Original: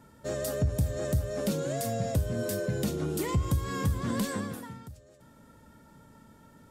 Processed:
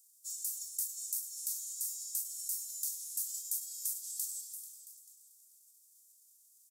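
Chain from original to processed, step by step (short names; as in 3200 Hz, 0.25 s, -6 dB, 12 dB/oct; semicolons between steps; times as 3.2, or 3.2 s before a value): spectral whitening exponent 0.6; inverse Chebyshev high-pass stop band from 2000 Hz, stop band 60 dB; feedback echo 0.44 s, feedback 38%, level -14.5 dB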